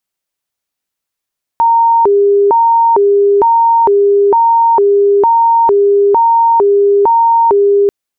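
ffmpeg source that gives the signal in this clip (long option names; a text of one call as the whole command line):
ffmpeg -f lavfi -i "aevalsrc='0.531*sin(2*PI*(663*t+260/1.1*(0.5-abs(mod(1.1*t,1)-0.5))))':duration=6.29:sample_rate=44100" out.wav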